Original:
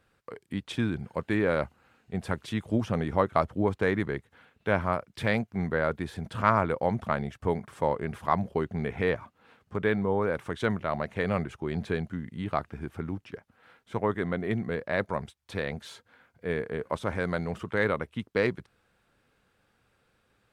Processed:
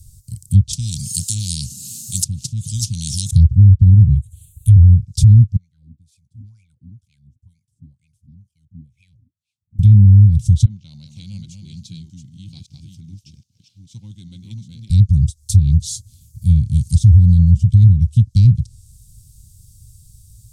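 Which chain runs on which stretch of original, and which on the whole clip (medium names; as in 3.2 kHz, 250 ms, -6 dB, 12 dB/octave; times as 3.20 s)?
0.73–3.31 s: high-pass 210 Hz 24 dB/octave + peaking EQ 1.1 kHz -5.5 dB 2.1 oct + spectrum-flattening compressor 4:1
4.14–4.76 s: resonant high shelf 6.3 kHz +7 dB, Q 1.5 + static phaser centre 1.1 kHz, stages 8
5.56–9.79 s: peaking EQ 610 Hz -5 dB 2.8 oct + wah-wah 2.1 Hz 240–2500 Hz, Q 19
10.65–14.90 s: chunks repeated in reverse 403 ms, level -5.5 dB + resonant high-pass 590 Hz, resonance Q 2.3 + distance through air 220 m
16.75–17.33 s: treble shelf 3 kHz +11.5 dB + whistle 1.4 kHz -57 dBFS
whole clip: inverse Chebyshev band-stop 410–1900 Hz, stop band 70 dB; low-pass that closes with the level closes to 760 Hz, closed at -35.5 dBFS; loudness maximiser +34 dB; trim -1 dB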